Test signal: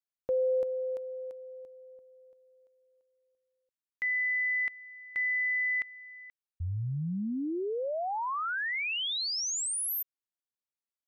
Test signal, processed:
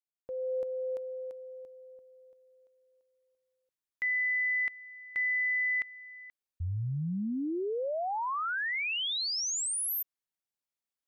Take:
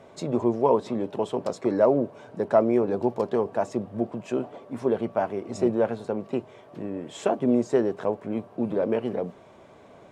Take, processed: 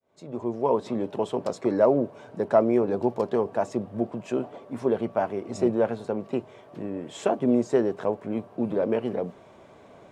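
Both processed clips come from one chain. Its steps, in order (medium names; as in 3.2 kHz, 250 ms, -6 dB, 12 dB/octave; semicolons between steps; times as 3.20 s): fade-in on the opening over 0.95 s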